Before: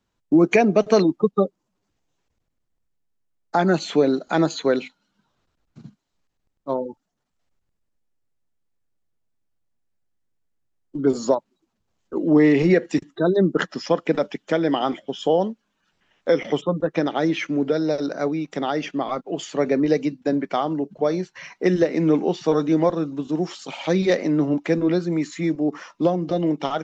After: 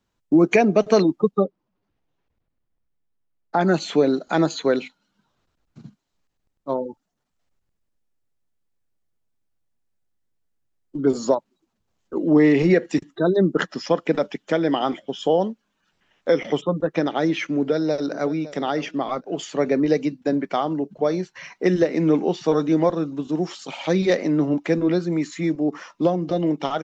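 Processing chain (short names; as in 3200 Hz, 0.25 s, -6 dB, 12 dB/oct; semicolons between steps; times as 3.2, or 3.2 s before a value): 1.37–3.61 air absorption 210 m; 17.55–18.3 echo throw 0.56 s, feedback 25%, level -16 dB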